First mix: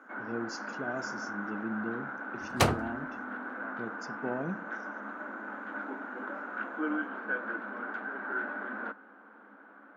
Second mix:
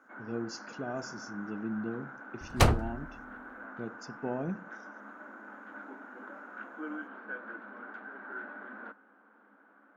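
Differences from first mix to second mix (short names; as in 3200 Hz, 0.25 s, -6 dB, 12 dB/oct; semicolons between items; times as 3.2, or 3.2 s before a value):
first sound -7.5 dB; master: remove HPF 130 Hz 12 dB/oct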